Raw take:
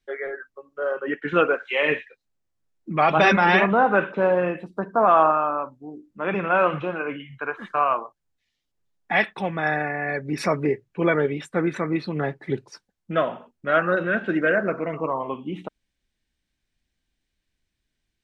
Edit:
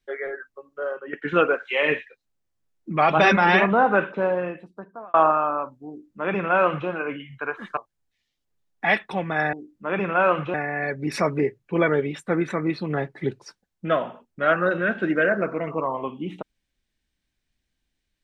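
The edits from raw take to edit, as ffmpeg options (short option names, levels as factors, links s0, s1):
-filter_complex "[0:a]asplit=6[s0][s1][s2][s3][s4][s5];[s0]atrim=end=1.13,asetpts=PTS-STARTPTS,afade=t=out:st=0.71:d=0.42:silence=0.251189[s6];[s1]atrim=start=1.13:end=5.14,asetpts=PTS-STARTPTS,afade=t=in:d=0.004:c=hsin:silence=0.251189,afade=t=out:st=2.8:d=1.21[s7];[s2]atrim=start=5.14:end=7.772,asetpts=PTS-STARTPTS,afade=t=in:d=0.004:c=hsin[s8];[s3]atrim=start=8.038:end=9.802[s9];[s4]atrim=start=5.878:end=6.892[s10];[s5]atrim=start=9.798[s11];[s6][s7][s8]concat=n=3:v=0:a=1[s12];[s12][s9]acrossfade=d=0.004:c1=hsin:c2=hsin[s13];[s13][s10]acrossfade=d=0.004:c1=hsin:c2=hsin[s14];[s14][s11]acrossfade=d=0.004:c1=hsin:c2=hsin"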